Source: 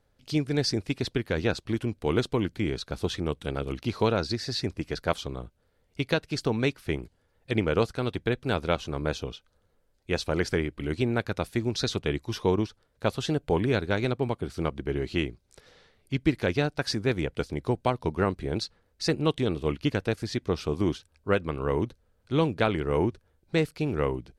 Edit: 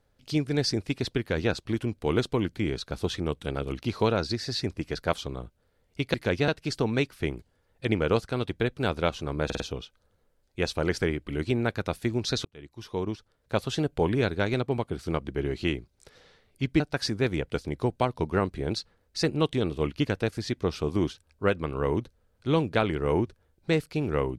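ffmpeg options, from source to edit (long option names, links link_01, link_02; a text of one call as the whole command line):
ffmpeg -i in.wav -filter_complex "[0:a]asplit=8[link_01][link_02][link_03][link_04][link_05][link_06][link_07][link_08];[link_01]atrim=end=6.142[link_09];[link_02]atrim=start=16.308:end=16.652[link_10];[link_03]atrim=start=6.138:end=9.162[link_11];[link_04]atrim=start=9.108:end=9.162[link_12];[link_05]atrim=start=9.108:end=9.162[link_13];[link_06]atrim=start=9.108:end=11.96,asetpts=PTS-STARTPTS,afade=type=out:start_time=2.848:duration=0.004:curve=hsin[link_14];[link_07]atrim=start=11.96:end=16.312,asetpts=PTS-STARTPTS,afade=type=in:duration=1.14[link_15];[link_08]atrim=start=16.648[link_16];[link_09][link_10]acrossfade=duration=0.004:curve1=hsin:curve2=hsin[link_17];[link_17][link_11]acrossfade=duration=0.004:curve1=hsin:curve2=hsin[link_18];[link_18][link_12]acrossfade=duration=0.004:curve1=hsin:curve2=hsin[link_19];[link_19][link_13]acrossfade=duration=0.004:curve1=hsin:curve2=hsin[link_20];[link_14][link_15]concat=n=2:v=0:a=1[link_21];[link_20][link_21]acrossfade=duration=0.004:curve1=hsin:curve2=hsin[link_22];[link_22][link_16]acrossfade=duration=0.004:curve1=hsin:curve2=hsin" out.wav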